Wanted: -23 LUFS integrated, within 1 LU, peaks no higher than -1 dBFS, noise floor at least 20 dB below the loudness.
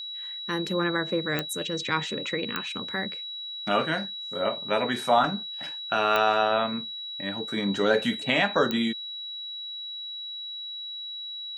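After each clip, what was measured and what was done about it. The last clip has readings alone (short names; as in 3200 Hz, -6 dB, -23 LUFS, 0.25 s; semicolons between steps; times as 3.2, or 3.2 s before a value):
clicks 4; steady tone 3900 Hz; tone level -34 dBFS; loudness -27.5 LUFS; peak -8.0 dBFS; loudness target -23.0 LUFS
-> de-click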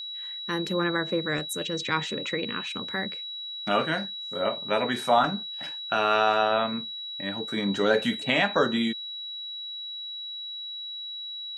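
clicks 0; steady tone 3900 Hz; tone level -34 dBFS
-> notch 3900 Hz, Q 30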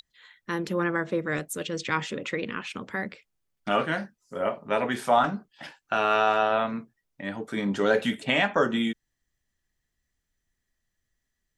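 steady tone none; loudness -27.0 LUFS; peak -8.5 dBFS; loudness target -23.0 LUFS
-> gain +4 dB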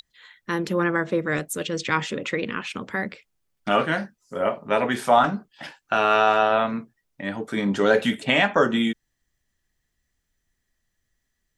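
loudness -23.0 LUFS; peak -4.5 dBFS; noise floor -77 dBFS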